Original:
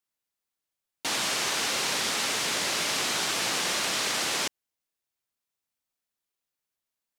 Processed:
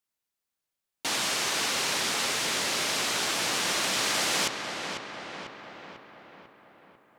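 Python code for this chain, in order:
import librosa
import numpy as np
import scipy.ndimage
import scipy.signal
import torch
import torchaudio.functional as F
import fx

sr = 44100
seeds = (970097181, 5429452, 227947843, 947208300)

y = fx.echo_filtered(x, sr, ms=496, feedback_pct=58, hz=3000.0, wet_db=-6.5)
y = fx.rider(y, sr, range_db=4, speed_s=2.0)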